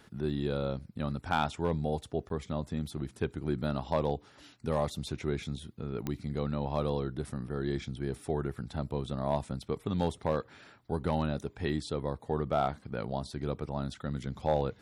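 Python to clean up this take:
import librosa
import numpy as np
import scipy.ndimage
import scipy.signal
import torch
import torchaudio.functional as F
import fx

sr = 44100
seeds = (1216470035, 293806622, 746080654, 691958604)

y = fx.fix_declip(x, sr, threshold_db=-18.0)
y = fx.fix_declick_ar(y, sr, threshold=10.0)
y = fx.fix_interpolate(y, sr, at_s=(2.29,), length_ms=12.0)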